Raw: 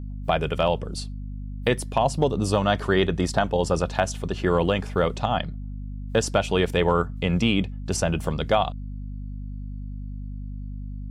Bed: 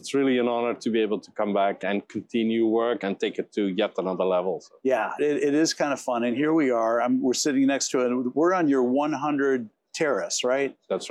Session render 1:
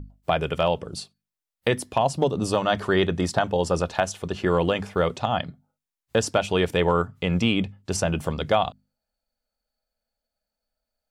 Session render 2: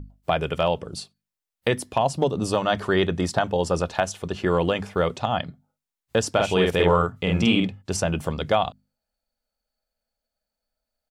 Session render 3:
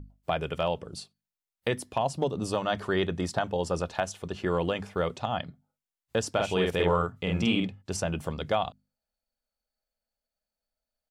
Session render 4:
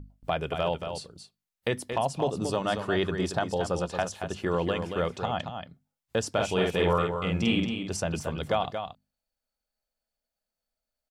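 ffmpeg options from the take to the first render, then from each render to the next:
ffmpeg -i in.wav -af "bandreject=frequency=50:width_type=h:width=6,bandreject=frequency=100:width_type=h:width=6,bandreject=frequency=150:width_type=h:width=6,bandreject=frequency=200:width_type=h:width=6,bandreject=frequency=250:width_type=h:width=6" out.wav
ffmpeg -i in.wav -filter_complex "[0:a]asplit=3[link_01][link_02][link_03];[link_01]afade=type=out:start_time=6.38:duration=0.02[link_04];[link_02]asplit=2[link_05][link_06];[link_06]adelay=48,volume=-2dB[link_07];[link_05][link_07]amix=inputs=2:normalize=0,afade=type=in:start_time=6.38:duration=0.02,afade=type=out:start_time=7.81:duration=0.02[link_08];[link_03]afade=type=in:start_time=7.81:duration=0.02[link_09];[link_04][link_08][link_09]amix=inputs=3:normalize=0" out.wav
ffmpeg -i in.wav -af "volume=-6dB" out.wav
ffmpeg -i in.wav -af "aecho=1:1:228:0.422" out.wav

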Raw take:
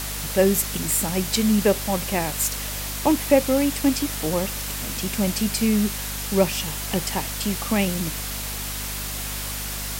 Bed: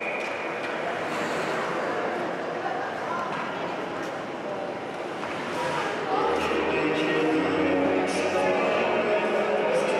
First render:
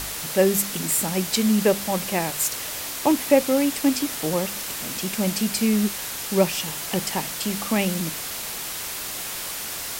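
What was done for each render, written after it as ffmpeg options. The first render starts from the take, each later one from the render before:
ffmpeg -i in.wav -af "bandreject=frequency=50:width_type=h:width=4,bandreject=frequency=100:width_type=h:width=4,bandreject=frequency=150:width_type=h:width=4,bandreject=frequency=200:width_type=h:width=4,bandreject=frequency=250:width_type=h:width=4" out.wav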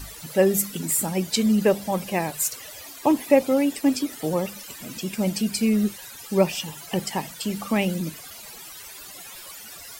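ffmpeg -i in.wav -af "afftdn=noise_reduction=16:noise_floor=-32" out.wav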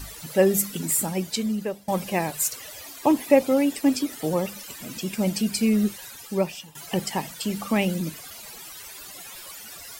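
ffmpeg -i in.wav -filter_complex "[0:a]asplit=3[link_01][link_02][link_03];[link_01]atrim=end=1.88,asetpts=PTS-STARTPTS,afade=type=out:start_time=0.96:duration=0.92:silence=0.112202[link_04];[link_02]atrim=start=1.88:end=6.75,asetpts=PTS-STARTPTS,afade=type=in:duration=0.004:curve=hsin:silence=0.112202,afade=type=out:start_time=4.2:duration=0.67:silence=0.149624[link_05];[link_03]atrim=start=6.75,asetpts=PTS-STARTPTS,afade=type=in:duration=0.004:curve=hsin:silence=0.149624[link_06];[link_04][link_05][link_06]concat=n=3:v=0:a=1" out.wav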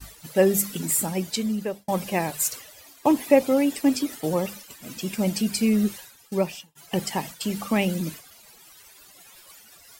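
ffmpeg -i in.wav -af "agate=range=-33dB:threshold=-33dB:ratio=3:detection=peak" out.wav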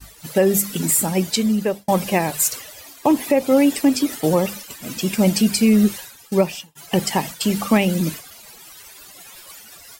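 ffmpeg -i in.wav -af "alimiter=limit=-14dB:level=0:latency=1:release=245,dynaudnorm=framelen=140:gausssize=3:maxgain=8dB" out.wav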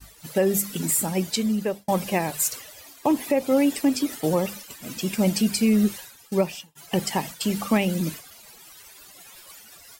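ffmpeg -i in.wav -af "volume=-5dB" out.wav

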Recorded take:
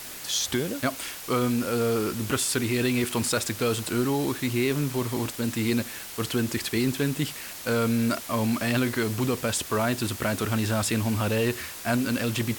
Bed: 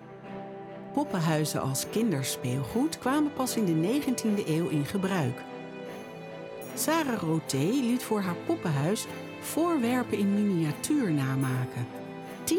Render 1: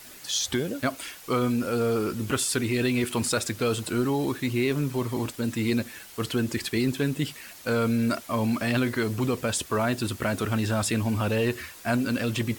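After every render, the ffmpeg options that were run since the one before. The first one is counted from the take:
ffmpeg -i in.wav -af "afftdn=noise_reduction=8:noise_floor=-39" out.wav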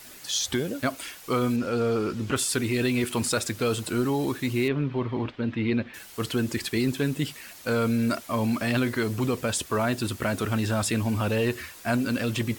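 ffmpeg -i in.wav -filter_complex "[0:a]asettb=1/sr,asplit=3[link_01][link_02][link_03];[link_01]atrim=end=1.564[link_04];[link_02]atrim=start=1.56:end=2.36,asetpts=PTS-STARTPTS,afade=type=in:duration=0.004:curve=qsin,afade=type=out:start_time=0.796:duration=0.004:curve=qsin,acrossover=split=6800[link_05][link_06];[link_06]acompressor=threshold=-60dB:ratio=4:attack=1:release=60[link_07];[link_05][link_07]amix=inputs=2:normalize=0[link_08];[link_03]atrim=start=2.356[link_09];[link_04][link_08]acrossfade=duration=0.004:curve1=hsin:curve2=qsin[link_10];[link_10][link_09]acrossfade=duration=0.004:curve1=qsin:curve2=hsin,asettb=1/sr,asplit=3[link_11][link_12][link_13];[link_11]atrim=end=4.684[link_14];[link_12]atrim=start=4.68:end=5.94,asetpts=PTS-STARTPTS,afade=type=in:duration=0.004:curve=qsin,afade=type=out:start_time=1.256:duration=0.004:curve=qsin,lowpass=frequency=3300:width=0.5412,lowpass=frequency=3300:width=1.3066[link_15];[link_13]atrim=start=5.936[link_16];[link_14][link_15]acrossfade=duration=0.004:curve1=hsin:curve2=qsin[link_17];[link_17][link_16]acrossfade=duration=0.004:curve1=qsin:curve2=hsin" out.wav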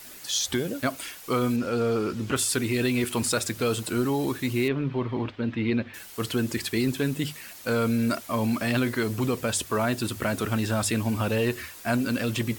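ffmpeg -i in.wav -af "highshelf=frequency=11000:gain=4,bandreject=frequency=50:width_type=h:width=6,bandreject=frequency=100:width_type=h:width=6,bandreject=frequency=150:width_type=h:width=6" out.wav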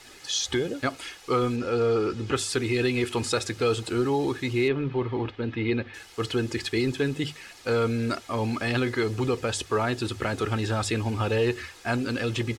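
ffmpeg -i in.wav -af "lowpass=6100,aecho=1:1:2.4:0.45" out.wav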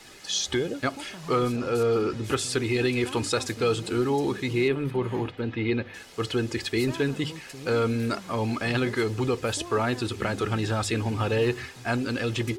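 ffmpeg -i in.wav -i bed.wav -filter_complex "[1:a]volume=-14dB[link_01];[0:a][link_01]amix=inputs=2:normalize=0" out.wav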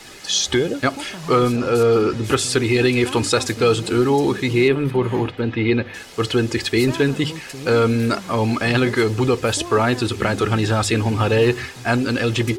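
ffmpeg -i in.wav -af "volume=8dB" out.wav

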